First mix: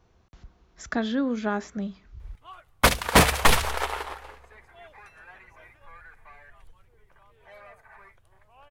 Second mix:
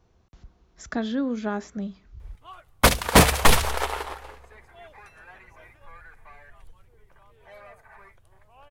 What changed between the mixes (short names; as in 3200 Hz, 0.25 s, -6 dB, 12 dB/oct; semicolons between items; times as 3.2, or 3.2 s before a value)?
background +3.5 dB; master: add bell 1800 Hz -3.5 dB 2.5 oct